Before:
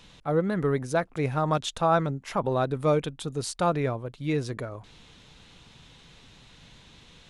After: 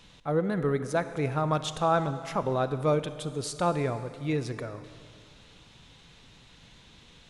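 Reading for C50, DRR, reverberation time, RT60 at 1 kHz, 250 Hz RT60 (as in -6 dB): 11.5 dB, 11.0 dB, 2.2 s, 2.2 s, 2.2 s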